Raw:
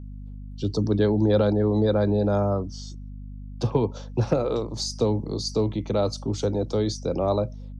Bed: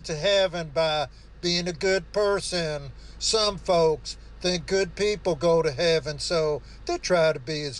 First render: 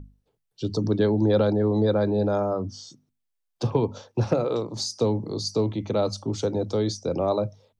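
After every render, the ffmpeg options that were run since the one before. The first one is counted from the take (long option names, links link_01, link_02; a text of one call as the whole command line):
ffmpeg -i in.wav -af "bandreject=frequency=50:width_type=h:width=6,bandreject=frequency=100:width_type=h:width=6,bandreject=frequency=150:width_type=h:width=6,bandreject=frequency=200:width_type=h:width=6,bandreject=frequency=250:width_type=h:width=6" out.wav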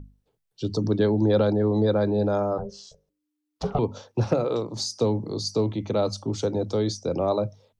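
ffmpeg -i in.wav -filter_complex "[0:a]asettb=1/sr,asplit=3[link_01][link_02][link_03];[link_01]atrim=end=2.584[link_04];[link_02]atrim=start=2.58:end=3.79,asetpts=PTS-STARTPTS,afade=type=in:duration=0.004:curve=qsin,afade=type=out:start_time=1.206:duration=0.004:curve=qsin,aeval=exprs='val(0)*sin(2*PI*300*n/s)':channel_layout=same[link_05];[link_03]atrim=start=3.786[link_06];[link_04][link_05]acrossfade=duration=0.004:curve1=hsin:curve2=qsin[link_07];[link_07][link_06]acrossfade=duration=0.004:curve1=qsin:curve2=hsin" out.wav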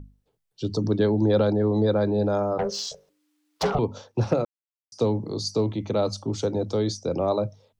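ffmpeg -i in.wav -filter_complex "[0:a]asettb=1/sr,asplit=3[link_01][link_02][link_03];[link_01]atrim=end=2.594[link_04];[link_02]atrim=start=2.59:end=3.75,asetpts=PTS-STARTPTS,afade=type=in:duration=0.004:curve=qsin,afade=type=out:start_time=1.156:duration=0.004:curve=qsin,asplit=2[link_05][link_06];[link_06]highpass=frequency=720:poles=1,volume=23dB,asoftclip=type=tanh:threshold=-14.5dB[link_07];[link_05][link_07]amix=inputs=2:normalize=0,lowpass=frequency=6200:poles=1,volume=-6dB[link_08];[link_03]atrim=start=3.746[link_09];[link_04][link_08]acrossfade=duration=0.004:curve1=hsin:curve2=qsin[link_10];[link_10][link_09]acrossfade=duration=0.004:curve1=qsin:curve2=hsin,asplit=3[link_11][link_12][link_13];[link_11]atrim=end=4.45,asetpts=PTS-STARTPTS,afade=type=out:start_time=4.446:duration=0.004:curve=hsin[link_14];[link_12]atrim=start=4.45:end=4.92,asetpts=PTS-STARTPTS,volume=0[link_15];[link_13]atrim=start=4.92,asetpts=PTS-STARTPTS,afade=type=in:duration=0.004:curve=hsin[link_16];[link_14][link_15][link_16]concat=n=3:v=0:a=1" out.wav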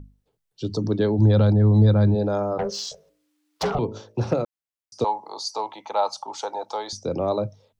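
ffmpeg -i in.wav -filter_complex "[0:a]asplit=3[link_01][link_02][link_03];[link_01]afade=type=out:start_time=1.18:duration=0.02[link_04];[link_02]asubboost=boost=11:cutoff=150,afade=type=in:start_time=1.18:duration=0.02,afade=type=out:start_time=2.14:duration=0.02[link_05];[link_03]afade=type=in:start_time=2.14:duration=0.02[link_06];[link_04][link_05][link_06]amix=inputs=3:normalize=0,asettb=1/sr,asplit=3[link_07][link_08][link_09];[link_07]atrim=end=2.794[link_10];[link_08]atrim=start=2.79:end=4.31,asetpts=PTS-STARTPTS,afade=type=in:duration=0.004:curve=qsin,afade=type=out:start_time=1.516:duration=0.004:curve=qsin,bandreject=frequency=54.42:width_type=h:width=4,bandreject=frequency=108.84:width_type=h:width=4,bandreject=frequency=163.26:width_type=h:width=4,bandreject=frequency=217.68:width_type=h:width=4,bandreject=frequency=272.1:width_type=h:width=4,bandreject=frequency=326.52:width_type=h:width=4,bandreject=frequency=380.94:width_type=h:width=4,bandreject=frequency=435.36:width_type=h:width=4,bandreject=frequency=489.78:width_type=h:width=4,bandreject=frequency=544.2:width_type=h:width=4,bandreject=frequency=598.62:width_type=h:width=4,bandreject=frequency=653.04:width_type=h:width=4[link_11];[link_09]atrim=start=4.306[link_12];[link_10][link_11]acrossfade=duration=0.004:curve1=hsin:curve2=qsin[link_13];[link_13][link_12]acrossfade=duration=0.004:curve1=qsin:curve2=hsin,asettb=1/sr,asplit=3[link_14][link_15][link_16];[link_14]atrim=end=5.044[link_17];[link_15]atrim=start=5.04:end=6.93,asetpts=PTS-STARTPTS,afade=type=in:duration=0.004:curve=qsin,afade=type=out:start_time=1.886:duration=0.004:curve=qsin,highpass=frequency=860:width_type=q:width=6.2[link_18];[link_16]atrim=start=6.926[link_19];[link_17][link_18]acrossfade=duration=0.004:curve1=hsin:curve2=qsin[link_20];[link_20][link_19]acrossfade=duration=0.004:curve1=qsin:curve2=hsin" out.wav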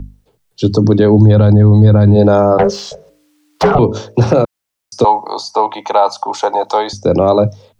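ffmpeg -i in.wav -filter_complex "[0:a]acrossover=split=110|2400[link_01][link_02][link_03];[link_03]acompressor=threshold=-44dB:ratio=6[link_04];[link_01][link_02][link_04]amix=inputs=3:normalize=0,alimiter=level_in=15.5dB:limit=-1dB:release=50:level=0:latency=1" out.wav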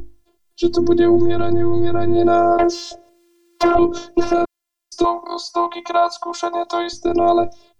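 ffmpeg -i in.wav -af "afftfilt=real='hypot(re,im)*cos(PI*b)':imag='0':win_size=512:overlap=0.75" out.wav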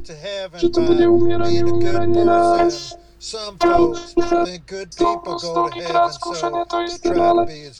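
ffmpeg -i in.wav -i bed.wav -filter_complex "[1:a]volume=-6dB[link_01];[0:a][link_01]amix=inputs=2:normalize=0" out.wav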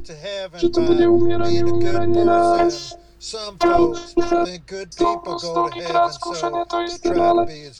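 ffmpeg -i in.wav -af "volume=-1dB" out.wav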